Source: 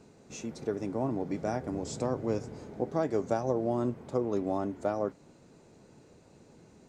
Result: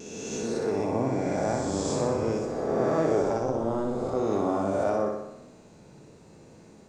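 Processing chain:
peak hold with a rise ahead of every peak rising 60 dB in 2.08 s
0:03.22–0:04.17: amplitude modulation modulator 240 Hz, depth 70%
pitch vibrato 0.82 Hz 18 cents
on a send: flutter between parallel walls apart 10.5 metres, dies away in 0.87 s

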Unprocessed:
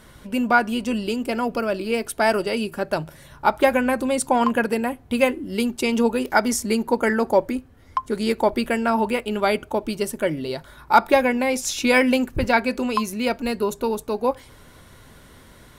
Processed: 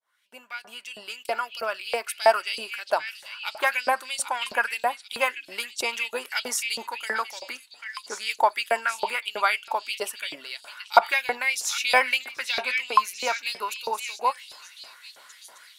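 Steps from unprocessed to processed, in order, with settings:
fade in at the beginning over 1.55 s
echo through a band-pass that steps 790 ms, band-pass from 3,200 Hz, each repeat 0.7 octaves, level −5.5 dB
in parallel at −10.5 dB: asymmetric clip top −12 dBFS
on the sum: auto-filter high-pass saw up 3.1 Hz 620–4,400 Hz
level −4.5 dB

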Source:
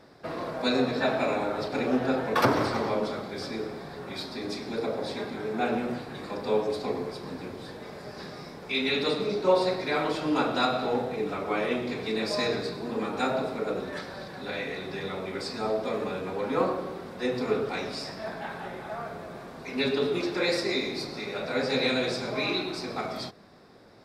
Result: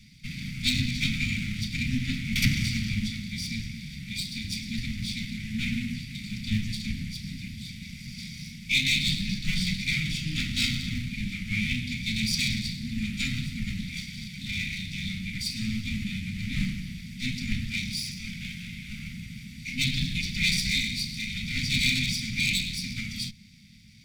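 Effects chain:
lower of the sound and its delayed copy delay 0.86 ms
Chebyshev band-stop filter 220–2,100 Hz, order 4
level +7 dB

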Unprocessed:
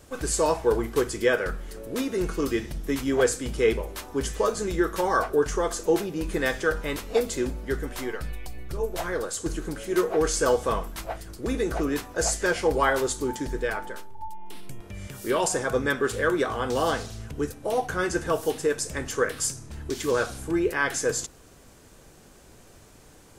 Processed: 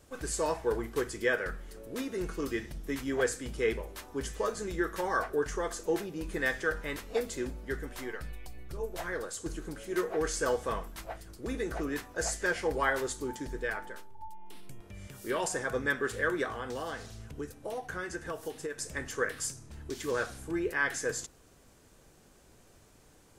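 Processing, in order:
dynamic equaliser 1,800 Hz, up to +7 dB, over −45 dBFS, Q 3
0:16.47–0:18.79: downward compressor, threshold −26 dBFS, peak gain reduction 7.5 dB
level −8 dB

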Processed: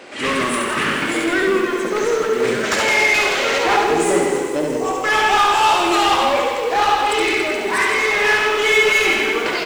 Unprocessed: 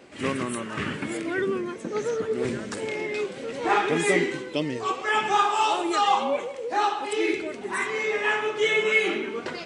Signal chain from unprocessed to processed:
0:02.64–0:03.58: gain on a spectral selection 550–7,700 Hz +10 dB
0:03.76–0:05.04: flat-topped bell 2,300 Hz −15 dB 2.3 octaves
mid-hump overdrive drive 21 dB, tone 6,100 Hz, clips at −9.5 dBFS
reverse bouncing-ball delay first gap 70 ms, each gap 1.3×, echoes 5
feedback echo at a low word length 94 ms, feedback 80%, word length 6 bits, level −12 dB
level −1 dB

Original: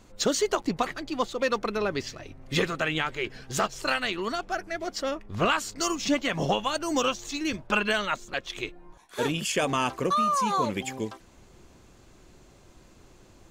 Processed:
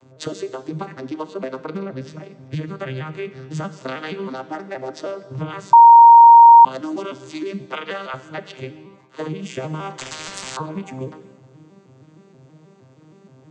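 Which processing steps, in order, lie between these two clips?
vocoder with an arpeggio as carrier minor triad, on C3, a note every 158 ms
0:07.66–0:08.14: high-pass filter 480 Hz 12 dB per octave
downward compressor 12 to 1, threshold −31 dBFS, peak gain reduction 14.5 dB
reverb whose tail is shaped and stops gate 470 ms falling, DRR 11 dB
0:05.73–0:06.65: beep over 932 Hz −9.5 dBFS
0:09.98–0:10.57: every bin compressed towards the loudest bin 10 to 1
level +6.5 dB

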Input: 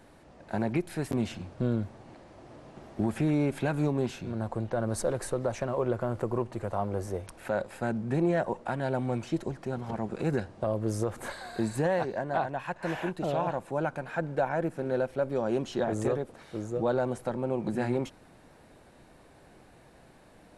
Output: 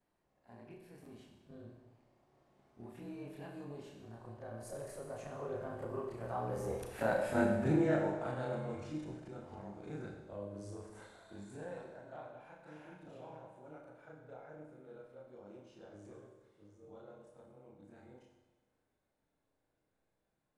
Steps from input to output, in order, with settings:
every overlapping window played backwards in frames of 74 ms
source passing by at 0:07.29, 22 m/s, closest 10 metres
four-comb reverb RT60 1.2 s, combs from 29 ms, DRR 2.5 dB
level +1.5 dB

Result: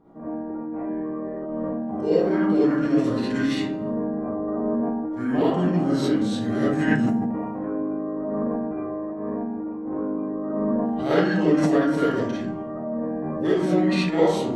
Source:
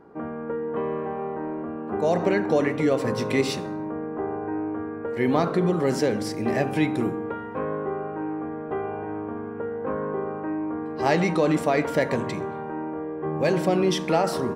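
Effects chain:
comb and all-pass reverb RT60 0.69 s, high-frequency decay 0.55×, pre-delay 15 ms, DRR −8 dB
formants moved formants −5 semitones
level −7 dB

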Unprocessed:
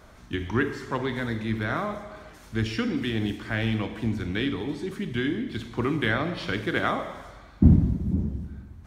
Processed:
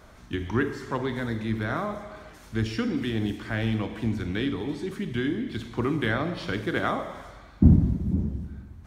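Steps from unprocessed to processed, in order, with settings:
dynamic equaliser 2,500 Hz, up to −4 dB, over −41 dBFS, Q 0.95

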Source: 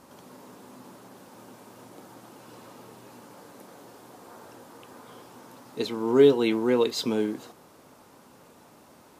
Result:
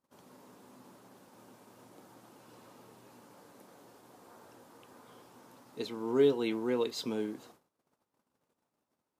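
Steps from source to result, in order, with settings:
noise gate −50 dBFS, range −24 dB
level −8.5 dB

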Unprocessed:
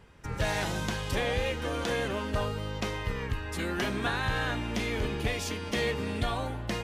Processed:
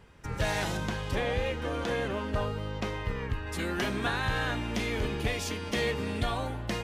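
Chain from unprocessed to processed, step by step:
0:00.77–0:03.47: high-shelf EQ 3,700 Hz −8 dB

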